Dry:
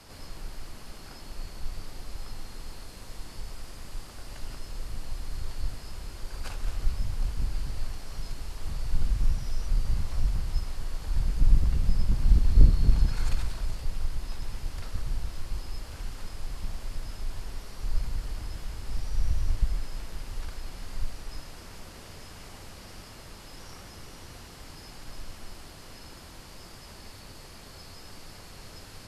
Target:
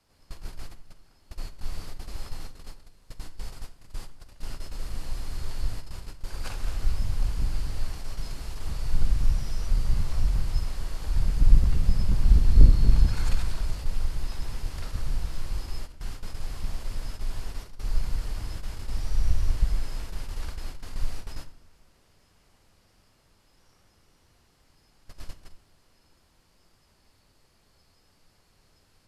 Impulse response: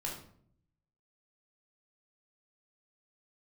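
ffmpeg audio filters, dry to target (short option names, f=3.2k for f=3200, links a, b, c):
-filter_complex "[0:a]agate=range=-20dB:threshold=-35dB:ratio=16:detection=peak,asplit=2[a][b];[1:a]atrim=start_sample=2205,adelay=46[c];[b][c]afir=irnorm=-1:irlink=0,volume=-14dB[d];[a][d]amix=inputs=2:normalize=0,volume=2dB"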